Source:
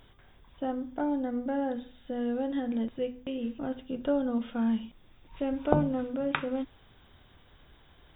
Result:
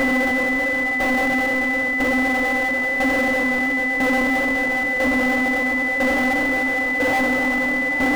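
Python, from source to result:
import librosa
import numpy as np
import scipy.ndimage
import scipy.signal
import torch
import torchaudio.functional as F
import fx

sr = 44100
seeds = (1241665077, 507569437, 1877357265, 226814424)

p1 = fx.paulstretch(x, sr, seeds[0], factor=46.0, window_s=1.0, from_s=0.56)
p2 = fx.power_curve(p1, sr, exponent=0.35)
p3 = np.clip(p2, -10.0 ** (-38.5 / 20.0), 10.0 ** (-38.5 / 20.0))
p4 = p2 + (p3 * 10.0 ** (-7.0 / 20.0))
p5 = fx.tremolo_shape(p4, sr, shape='saw_down', hz=1.0, depth_pct=65)
p6 = p5 + 10.0 ** (-26.0 / 20.0) * np.sin(2.0 * np.pi * 2000.0 * np.arange(len(p5)) / sr)
y = p6 * 10.0 ** (6.5 / 20.0)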